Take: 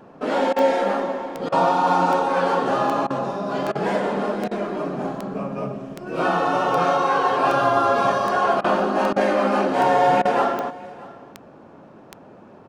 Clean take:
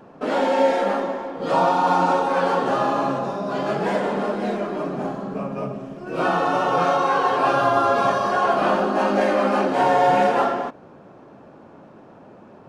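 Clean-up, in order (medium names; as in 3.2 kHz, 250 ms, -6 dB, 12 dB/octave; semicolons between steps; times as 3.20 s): de-click; interpolate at 0.53/1.49/3.07/3.72/4.48/8.61/9.13/10.22 s, 31 ms; inverse comb 629 ms -20.5 dB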